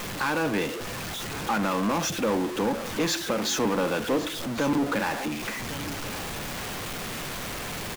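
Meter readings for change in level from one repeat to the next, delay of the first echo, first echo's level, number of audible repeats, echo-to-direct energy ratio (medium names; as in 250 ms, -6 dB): no regular repeats, 1104 ms, -15.0 dB, 1, -15.0 dB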